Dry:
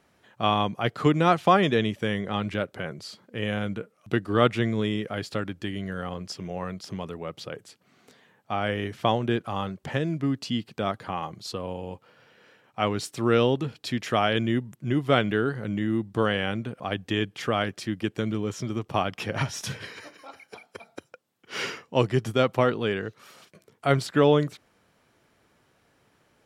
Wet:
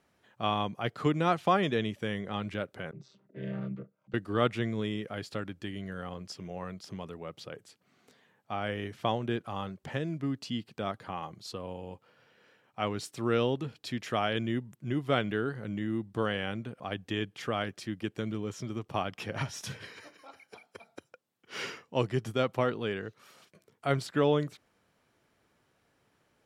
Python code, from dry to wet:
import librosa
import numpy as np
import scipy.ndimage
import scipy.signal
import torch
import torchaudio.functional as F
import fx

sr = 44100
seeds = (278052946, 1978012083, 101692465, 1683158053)

y = fx.chord_vocoder(x, sr, chord='minor triad', root=48, at=(2.91, 4.14))
y = y * librosa.db_to_amplitude(-6.5)